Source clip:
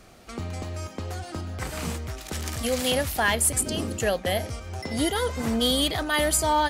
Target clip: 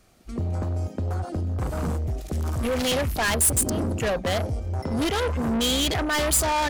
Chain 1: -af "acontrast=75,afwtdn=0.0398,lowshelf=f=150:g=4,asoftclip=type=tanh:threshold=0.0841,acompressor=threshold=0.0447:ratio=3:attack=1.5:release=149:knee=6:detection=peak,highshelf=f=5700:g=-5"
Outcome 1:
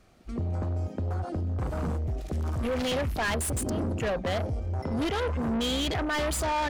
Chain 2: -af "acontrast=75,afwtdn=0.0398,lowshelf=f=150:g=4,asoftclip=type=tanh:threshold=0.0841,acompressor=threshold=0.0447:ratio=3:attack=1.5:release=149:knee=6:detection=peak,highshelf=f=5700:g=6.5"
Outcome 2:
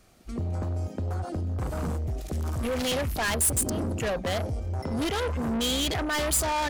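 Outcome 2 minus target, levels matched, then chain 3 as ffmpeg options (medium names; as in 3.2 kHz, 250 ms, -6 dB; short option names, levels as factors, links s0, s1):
compression: peak gain reduction +3.5 dB
-af "acontrast=75,afwtdn=0.0398,lowshelf=f=150:g=4,asoftclip=type=tanh:threshold=0.0841,highshelf=f=5700:g=6.5"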